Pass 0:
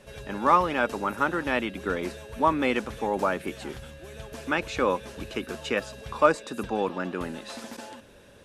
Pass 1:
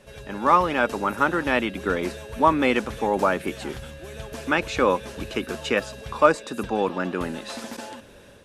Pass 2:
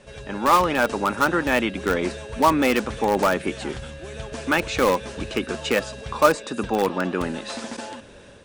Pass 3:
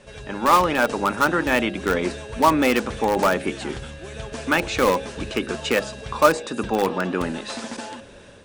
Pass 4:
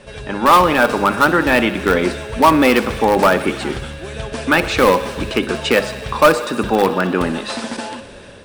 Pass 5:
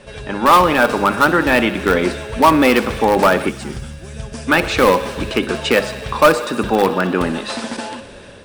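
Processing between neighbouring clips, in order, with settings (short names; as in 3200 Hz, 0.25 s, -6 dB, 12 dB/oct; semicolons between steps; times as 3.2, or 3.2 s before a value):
AGC gain up to 4.5 dB
steep low-pass 10000 Hz 96 dB/oct; in parallel at -9.5 dB: wrapped overs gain 14 dB
de-hum 68.54 Hz, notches 12; gain +1 dB
bell 6700 Hz -5.5 dB 0.41 oct; thinning echo 62 ms, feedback 81%, high-pass 420 Hz, level -17 dB; sine folder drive 3 dB, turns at -2.5 dBFS
spectral gain 3.49–4.49, 240–4600 Hz -8 dB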